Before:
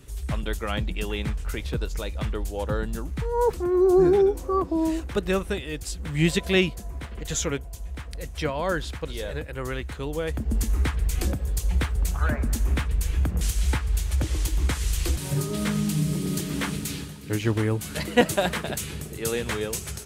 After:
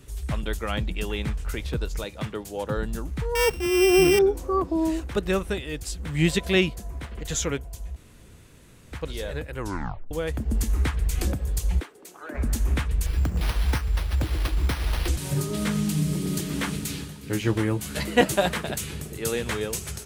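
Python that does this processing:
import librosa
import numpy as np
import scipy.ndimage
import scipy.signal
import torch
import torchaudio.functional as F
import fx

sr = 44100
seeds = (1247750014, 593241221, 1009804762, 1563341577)

y = fx.highpass(x, sr, hz=98.0, slope=24, at=(2.04, 2.77))
y = fx.sample_sort(y, sr, block=16, at=(3.35, 4.19))
y = fx.ladder_highpass(y, sr, hz=290.0, resonance_pct=55, at=(11.79, 12.34), fade=0.02)
y = fx.resample_bad(y, sr, factor=6, down='none', up='hold', at=(13.06, 15.08))
y = fx.doubler(y, sr, ms=15.0, db=-7.5, at=(17.21, 18.48))
y = fx.edit(y, sr, fx.room_tone_fill(start_s=7.96, length_s=0.96),
    fx.tape_stop(start_s=9.58, length_s=0.53), tone=tone)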